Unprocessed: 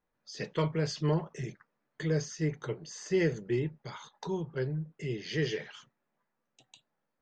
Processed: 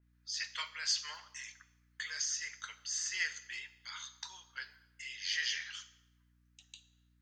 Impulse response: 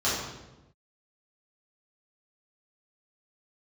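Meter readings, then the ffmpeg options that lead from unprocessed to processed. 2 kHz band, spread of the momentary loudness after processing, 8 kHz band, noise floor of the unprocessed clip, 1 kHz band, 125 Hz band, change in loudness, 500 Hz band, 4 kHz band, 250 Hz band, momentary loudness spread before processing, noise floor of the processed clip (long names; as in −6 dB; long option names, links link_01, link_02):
+2.5 dB, 16 LU, +8.5 dB, −83 dBFS, −8.0 dB, below −35 dB, −4.5 dB, below −35 dB, +6.5 dB, below −35 dB, 13 LU, −71 dBFS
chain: -filter_complex "[0:a]highpass=frequency=1400:width=0.5412,highpass=frequency=1400:width=1.3066,asplit=2[link_01][link_02];[1:a]atrim=start_sample=2205,highshelf=frequency=3600:gain=9[link_03];[link_02][link_03]afir=irnorm=-1:irlink=0,volume=-26dB[link_04];[link_01][link_04]amix=inputs=2:normalize=0,aeval=exprs='val(0)+0.000282*(sin(2*PI*60*n/s)+sin(2*PI*2*60*n/s)/2+sin(2*PI*3*60*n/s)/3+sin(2*PI*4*60*n/s)/4+sin(2*PI*5*60*n/s)/5)':channel_layout=same,adynamicequalizer=threshold=0.002:dfrequency=3900:dqfactor=0.7:tfrequency=3900:tqfactor=0.7:attack=5:release=100:ratio=0.375:range=3:mode=boostabove:tftype=highshelf,volume=2dB"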